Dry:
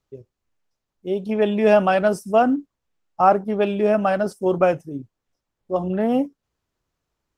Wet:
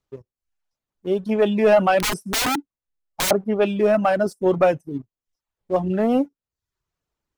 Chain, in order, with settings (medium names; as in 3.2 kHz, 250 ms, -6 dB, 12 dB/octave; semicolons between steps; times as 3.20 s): 1.99–3.31 s: integer overflow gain 18.5 dB; waveshaping leveller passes 1; reverb removal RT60 0.55 s; trim -1.5 dB